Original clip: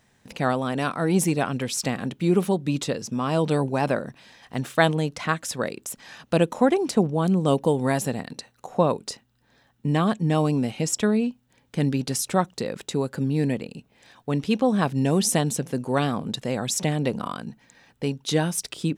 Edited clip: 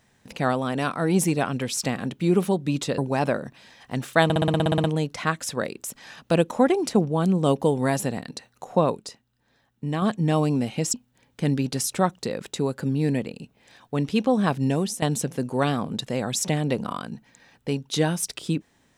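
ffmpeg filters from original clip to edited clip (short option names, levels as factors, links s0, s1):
-filter_complex "[0:a]asplit=16[s0][s1][s2][s3][s4][s5][s6][s7][s8][s9][s10][s11][s12][s13][s14][s15];[s0]atrim=end=2.982[s16];[s1]atrim=start=3.598:end=4.922[s17];[s2]atrim=start=4.858:end=4.922[s18];[s3]atrim=start=4.858:end=4.922[s19];[s4]atrim=start=4.858:end=4.922[s20];[s5]atrim=start=4.858:end=4.922[s21];[s6]atrim=start=4.858:end=4.922[s22];[s7]atrim=start=4.858:end=4.922[s23];[s8]atrim=start=4.858:end=4.922[s24];[s9]atrim=start=4.858:end=4.922[s25];[s10]atrim=start=4.858:end=4.922[s26];[s11]atrim=start=4.858:end=9.022[s27];[s12]atrim=start=9.018:end=10.042,asetpts=PTS-STARTPTS,volume=0.562[s28];[s13]atrim=start=10.038:end=10.962[s29];[s14]atrim=start=11.288:end=15.37,asetpts=PTS-STARTPTS,afade=t=out:st=3.732:d=0.35:silence=0.149624[s30];[s15]atrim=start=15.37,asetpts=PTS-STARTPTS,afade=t=in:d=0.004:c=hsin:silence=0.149624[s31];[s16][s17]acrossfade=d=0.004:c1=hsin:c2=hsin[s32];[s32][s18]acrossfade=d=0.004:c1=hsin:c2=hsin[s33];[s33][s19]acrossfade=d=0.004:c1=hsin:c2=hsin[s34];[s34][s20]acrossfade=d=0.004:c1=hsin:c2=hsin[s35];[s35][s21]acrossfade=d=0.004:c1=hsin:c2=hsin[s36];[s36][s22]acrossfade=d=0.004:c1=hsin:c2=hsin[s37];[s37][s23]acrossfade=d=0.004:c1=hsin:c2=hsin[s38];[s38][s24]acrossfade=d=0.004:c1=hsin:c2=hsin[s39];[s39][s25]acrossfade=d=0.004:c1=hsin:c2=hsin[s40];[s40][s26]acrossfade=d=0.004:c1=hsin:c2=hsin[s41];[s41][s27]acrossfade=d=0.004:c1=hsin:c2=hsin[s42];[s42][s28]acrossfade=d=0.004:c1=hsin:c2=hsin[s43];[s43][s29]acrossfade=d=0.004:c1=hsin:c2=hsin[s44];[s30][s31]concat=n=2:v=0:a=1[s45];[s44][s45]acrossfade=d=0.004:c1=hsin:c2=hsin"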